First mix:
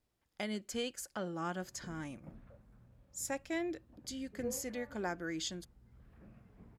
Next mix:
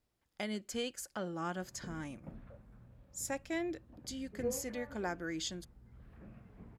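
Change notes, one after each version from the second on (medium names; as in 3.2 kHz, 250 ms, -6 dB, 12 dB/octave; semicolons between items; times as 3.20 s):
background +4.0 dB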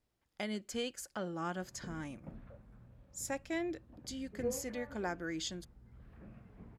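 master: add treble shelf 9.1 kHz -3.5 dB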